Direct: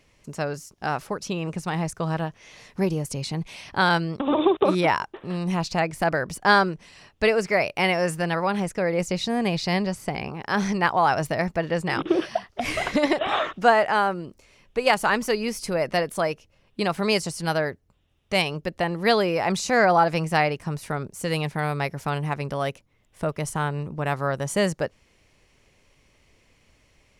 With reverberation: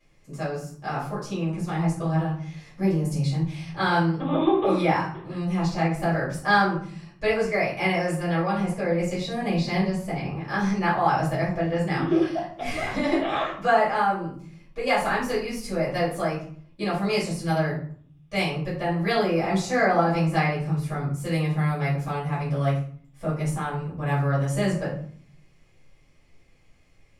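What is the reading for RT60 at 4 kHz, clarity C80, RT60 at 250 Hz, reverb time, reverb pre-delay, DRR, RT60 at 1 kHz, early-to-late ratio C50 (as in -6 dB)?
0.35 s, 9.5 dB, 0.90 s, 0.50 s, 3 ms, -10.0 dB, 0.50 s, 5.0 dB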